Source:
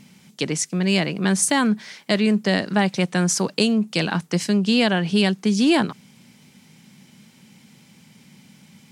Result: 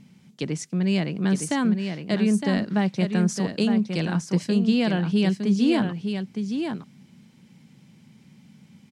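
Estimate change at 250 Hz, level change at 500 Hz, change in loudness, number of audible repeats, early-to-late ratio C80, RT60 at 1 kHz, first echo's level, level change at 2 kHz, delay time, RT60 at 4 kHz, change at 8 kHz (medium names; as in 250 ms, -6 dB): -1.0 dB, -4.5 dB, -3.5 dB, 1, no reverb, no reverb, -6.5 dB, -8.0 dB, 912 ms, no reverb, -11.5 dB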